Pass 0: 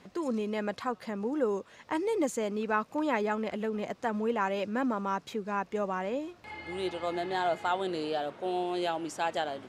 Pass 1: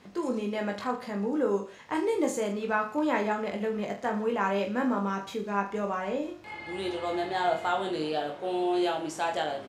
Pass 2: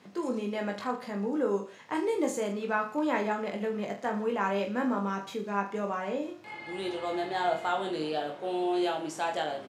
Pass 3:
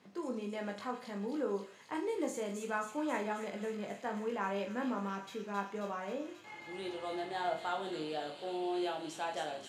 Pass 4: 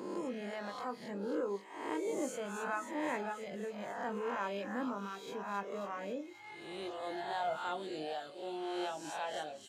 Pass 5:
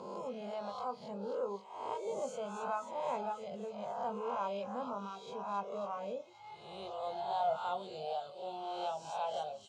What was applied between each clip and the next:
reverse bouncing-ball echo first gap 20 ms, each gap 1.25×, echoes 5
high-pass 110 Hz 24 dB/octave; trim -1.5 dB
feedback echo behind a high-pass 268 ms, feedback 72%, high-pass 3.3 kHz, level -3.5 dB; trim -7 dB
reverse spectral sustain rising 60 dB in 1.30 s; reverb removal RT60 1.2 s; trim -2 dB
distance through air 110 m; static phaser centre 750 Hz, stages 4; trim +4 dB

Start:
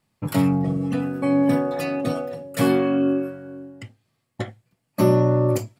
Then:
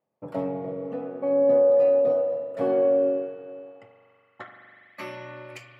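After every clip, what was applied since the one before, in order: spring tank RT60 3 s, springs 41 ms, chirp 35 ms, DRR 3.5 dB; band-pass sweep 560 Hz -> 2.4 kHz, 3.47–5.14 s; trim +1 dB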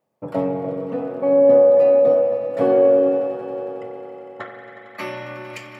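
echo with a slow build-up 91 ms, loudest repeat 5, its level -15.5 dB; trim +7 dB

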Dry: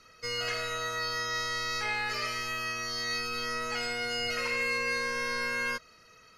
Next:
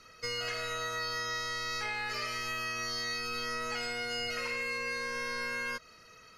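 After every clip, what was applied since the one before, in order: compression, threshold -34 dBFS, peak gain reduction 7 dB; trim +1.5 dB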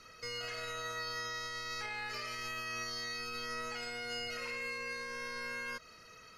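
peak limiter -32.5 dBFS, peak gain reduction 7.5 dB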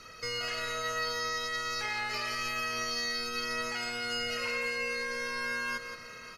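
multi-tap echo 172/567 ms -8/-15 dB; trim +6 dB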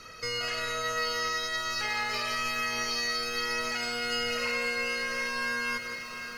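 bit-crushed delay 748 ms, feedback 55%, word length 9-bit, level -9 dB; trim +2.5 dB

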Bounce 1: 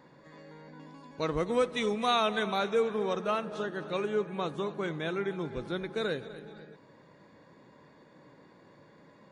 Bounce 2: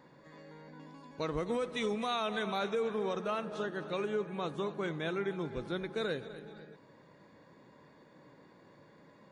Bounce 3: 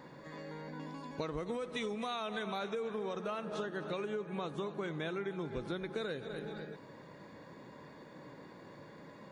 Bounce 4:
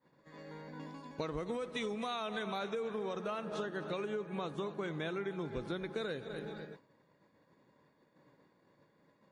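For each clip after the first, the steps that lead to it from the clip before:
peak limiter -22.5 dBFS, peak gain reduction 7.5 dB; trim -2 dB
compression, threshold -42 dBFS, peak gain reduction 12.5 dB; trim +6.5 dB
expander -41 dBFS

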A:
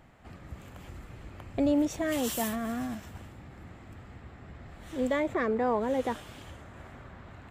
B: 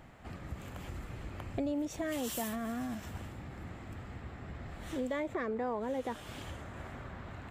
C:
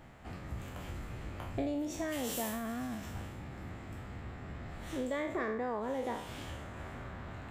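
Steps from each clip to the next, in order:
compression 3:1, threshold -38 dBFS, peak gain reduction 12 dB; trim +2.5 dB
spectral sustain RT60 0.63 s; trim -1.5 dB

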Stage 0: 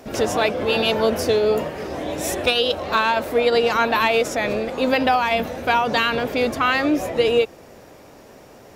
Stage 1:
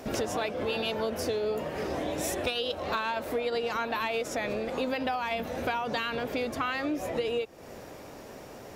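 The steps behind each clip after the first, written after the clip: compression 5:1, threshold -29 dBFS, peak gain reduction 14.5 dB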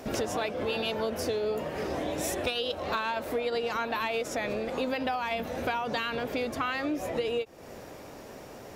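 endings held to a fixed fall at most 540 dB/s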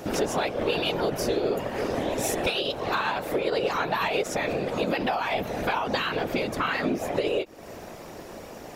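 whisper effect; trim +4 dB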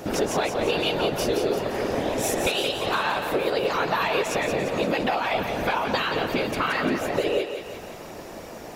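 thinning echo 173 ms, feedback 57%, high-pass 420 Hz, level -6.5 dB; trim +1.5 dB

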